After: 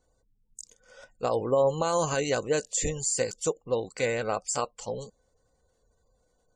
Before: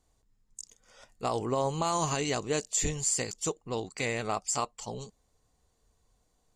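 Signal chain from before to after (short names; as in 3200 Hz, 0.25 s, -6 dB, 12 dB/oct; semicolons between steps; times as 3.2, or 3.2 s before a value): wow and flutter 21 cents; spectral gate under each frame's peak -30 dB strong; small resonant body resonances 520/1500 Hz, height 13 dB, ringing for 45 ms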